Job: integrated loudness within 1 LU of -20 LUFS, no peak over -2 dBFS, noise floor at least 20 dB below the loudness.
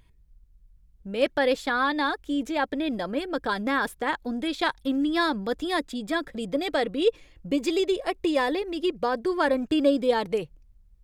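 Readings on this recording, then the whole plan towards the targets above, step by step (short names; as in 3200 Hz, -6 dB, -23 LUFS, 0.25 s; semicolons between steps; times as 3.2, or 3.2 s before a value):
loudness -26.5 LUFS; peak -10.5 dBFS; loudness target -20.0 LUFS
-> gain +6.5 dB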